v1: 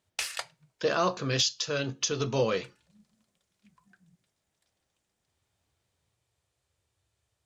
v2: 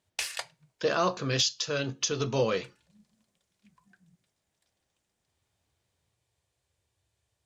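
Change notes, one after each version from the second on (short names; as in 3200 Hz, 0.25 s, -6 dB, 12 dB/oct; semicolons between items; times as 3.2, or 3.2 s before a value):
background: add notch 1300 Hz, Q 9.1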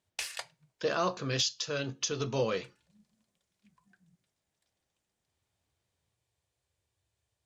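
speech -3.5 dB; background -4.0 dB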